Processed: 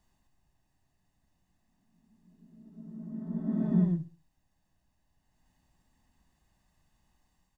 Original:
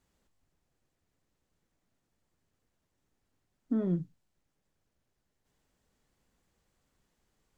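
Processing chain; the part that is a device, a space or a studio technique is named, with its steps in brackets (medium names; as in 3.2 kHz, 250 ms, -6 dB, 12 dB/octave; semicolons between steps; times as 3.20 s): comb 1.1 ms, depth 69%; reverse reverb (reverse; reverberation RT60 2.0 s, pre-delay 76 ms, DRR -3 dB; reverse); feedback delay 66 ms, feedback 39%, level -18 dB; trim -3.5 dB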